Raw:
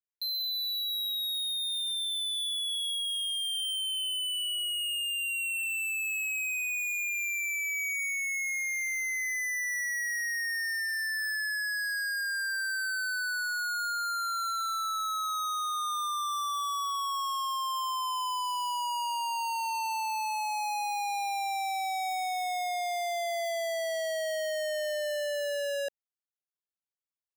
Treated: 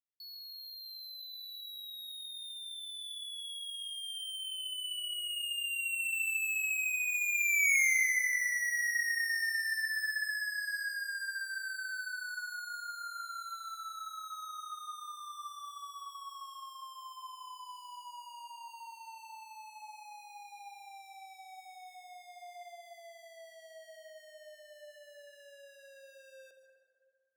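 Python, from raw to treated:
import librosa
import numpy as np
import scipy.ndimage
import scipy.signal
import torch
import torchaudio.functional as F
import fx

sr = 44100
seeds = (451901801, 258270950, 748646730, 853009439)

p1 = fx.doppler_pass(x, sr, speed_mps=23, closest_m=5.2, pass_at_s=7.74)
p2 = scipy.signal.sosfilt(scipy.signal.butter(2, 570.0, 'highpass', fs=sr, output='sos'), p1)
p3 = fx.rev_plate(p2, sr, seeds[0], rt60_s=2.0, hf_ratio=0.45, predelay_ms=105, drr_db=7.0)
p4 = 10.0 ** (-39.5 / 20.0) * np.tanh(p3 / 10.0 ** (-39.5 / 20.0))
p5 = p3 + (p4 * librosa.db_to_amplitude(-4.5))
p6 = fx.rider(p5, sr, range_db=4, speed_s=0.5)
p7 = p6 + fx.echo_bbd(p6, sr, ms=62, stages=1024, feedback_pct=74, wet_db=-10, dry=0)
y = p7 * librosa.db_to_amplitude(7.5)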